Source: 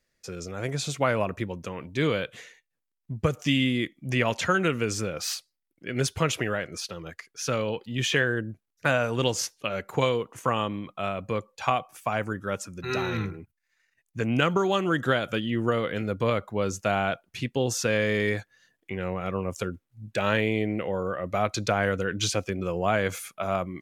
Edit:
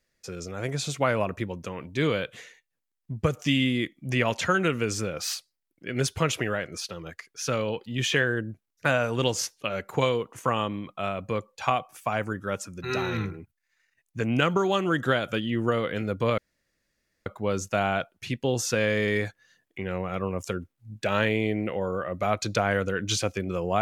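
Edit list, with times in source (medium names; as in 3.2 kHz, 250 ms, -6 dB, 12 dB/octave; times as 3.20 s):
16.38 s: insert room tone 0.88 s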